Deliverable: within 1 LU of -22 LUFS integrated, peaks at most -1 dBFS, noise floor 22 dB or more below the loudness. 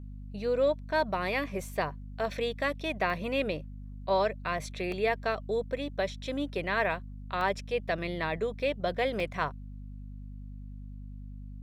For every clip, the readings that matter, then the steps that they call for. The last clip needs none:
dropouts 4; longest dropout 1.7 ms; hum 50 Hz; harmonics up to 250 Hz; hum level -40 dBFS; loudness -31.5 LUFS; peak -14.0 dBFS; loudness target -22.0 LUFS
-> interpolate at 3.1/4.92/7.41/9.2, 1.7 ms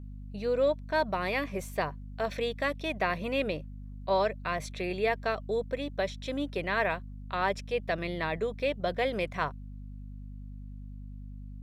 dropouts 0; hum 50 Hz; harmonics up to 250 Hz; hum level -40 dBFS
-> notches 50/100/150/200/250 Hz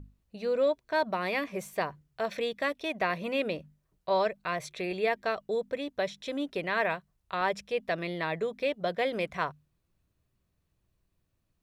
hum none; loudness -31.5 LUFS; peak -14.0 dBFS; loudness target -22.0 LUFS
-> gain +9.5 dB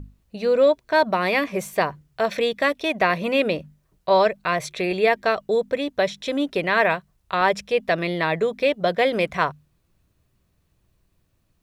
loudness -22.0 LUFS; peak -4.5 dBFS; noise floor -68 dBFS

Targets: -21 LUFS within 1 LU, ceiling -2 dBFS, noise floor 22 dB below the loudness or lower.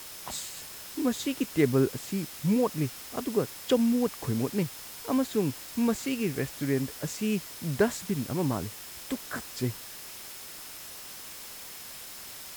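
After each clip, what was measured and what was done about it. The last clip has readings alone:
steady tone 5200 Hz; tone level -54 dBFS; noise floor -44 dBFS; noise floor target -53 dBFS; loudness -31.0 LUFS; peak -12.0 dBFS; loudness target -21.0 LUFS
-> notch 5200 Hz, Q 30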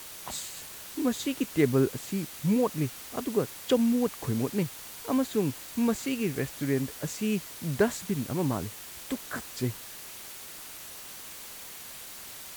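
steady tone none; noise floor -44 dBFS; noise floor target -53 dBFS
-> denoiser 9 dB, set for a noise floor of -44 dBFS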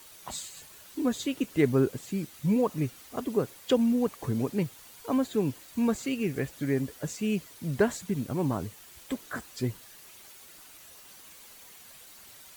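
noise floor -51 dBFS; noise floor target -52 dBFS
-> denoiser 6 dB, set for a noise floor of -51 dBFS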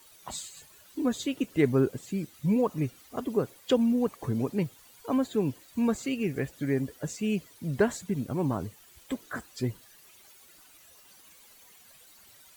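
noise floor -56 dBFS; loudness -30.0 LUFS; peak -12.0 dBFS; loudness target -21.0 LUFS
-> gain +9 dB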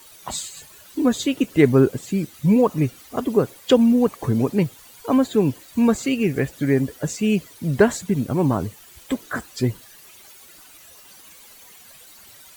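loudness -21.0 LUFS; peak -3.0 dBFS; noise floor -47 dBFS

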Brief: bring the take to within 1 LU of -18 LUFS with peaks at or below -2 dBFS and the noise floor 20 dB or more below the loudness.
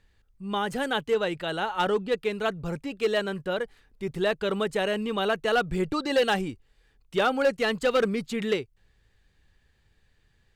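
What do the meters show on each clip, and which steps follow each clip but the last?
clipped 0.6%; flat tops at -17.0 dBFS; loudness -27.5 LUFS; peak -17.0 dBFS; loudness target -18.0 LUFS
-> clip repair -17 dBFS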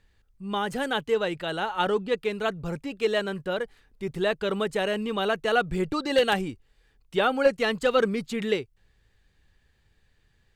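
clipped 0.0%; loudness -27.0 LUFS; peak -9.0 dBFS; loudness target -18.0 LUFS
-> gain +9 dB; limiter -2 dBFS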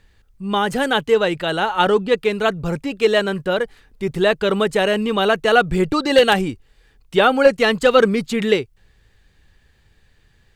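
loudness -18.0 LUFS; peak -2.0 dBFS; noise floor -58 dBFS

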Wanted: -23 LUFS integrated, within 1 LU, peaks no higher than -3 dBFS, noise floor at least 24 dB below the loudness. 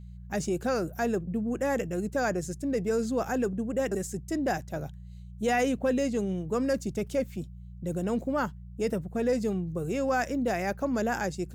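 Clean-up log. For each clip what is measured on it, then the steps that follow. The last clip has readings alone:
hum 60 Hz; harmonics up to 180 Hz; hum level -41 dBFS; loudness -30.0 LUFS; peak -16.5 dBFS; loudness target -23.0 LUFS
-> de-hum 60 Hz, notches 3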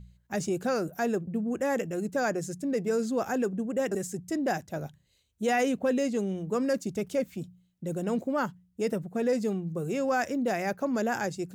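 hum none; loudness -30.0 LUFS; peak -17.0 dBFS; loudness target -23.0 LUFS
-> gain +7 dB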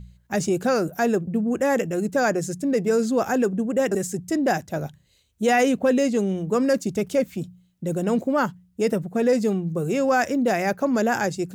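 loudness -23.0 LUFS; peak -10.0 dBFS; noise floor -62 dBFS

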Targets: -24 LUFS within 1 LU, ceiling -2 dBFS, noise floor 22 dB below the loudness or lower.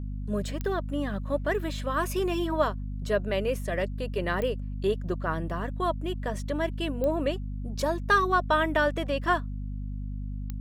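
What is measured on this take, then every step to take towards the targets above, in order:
clicks 4; hum 50 Hz; harmonics up to 250 Hz; hum level -31 dBFS; loudness -29.0 LUFS; peak -10.5 dBFS; loudness target -24.0 LUFS
-> de-click; de-hum 50 Hz, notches 5; gain +5 dB

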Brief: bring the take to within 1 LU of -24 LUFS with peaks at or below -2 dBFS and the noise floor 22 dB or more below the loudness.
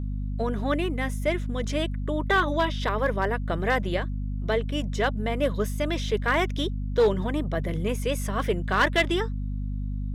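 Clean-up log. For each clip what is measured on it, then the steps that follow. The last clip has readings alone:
clipped 0.3%; flat tops at -14.5 dBFS; hum 50 Hz; harmonics up to 250 Hz; hum level -27 dBFS; loudness -26.5 LUFS; peak -14.5 dBFS; loudness target -24.0 LUFS
-> clip repair -14.5 dBFS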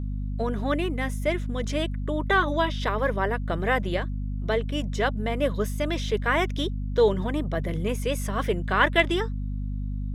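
clipped 0.0%; hum 50 Hz; harmonics up to 250 Hz; hum level -27 dBFS
-> notches 50/100/150/200/250 Hz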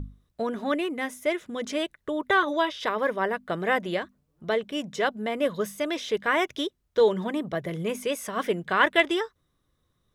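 hum none; loudness -27.0 LUFS; peak -6.5 dBFS; loudness target -24.0 LUFS
-> gain +3 dB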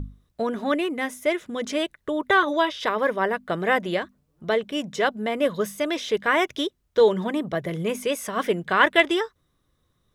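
loudness -24.0 LUFS; peak -3.5 dBFS; noise floor -71 dBFS

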